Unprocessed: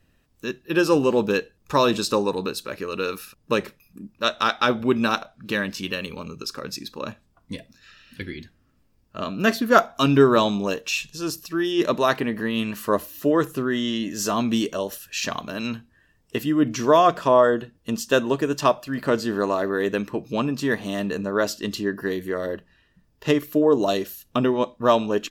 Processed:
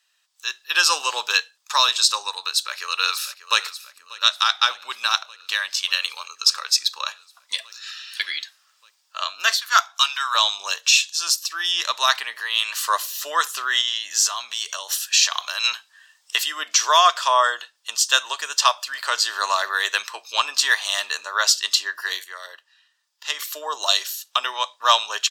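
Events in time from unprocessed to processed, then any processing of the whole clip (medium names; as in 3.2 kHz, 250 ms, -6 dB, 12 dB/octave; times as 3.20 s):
2.45–3.59 s: echo throw 590 ms, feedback 70%, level -15 dB
9.57–10.35 s: high-pass 820 Hz 24 dB/octave
13.81–15.64 s: compression, threshold -28 dBFS
22.24–23.39 s: gain -10.5 dB
whole clip: high-pass 960 Hz 24 dB/octave; high-order bell 5.3 kHz +9 dB; level rider gain up to 11.5 dB; trim -1 dB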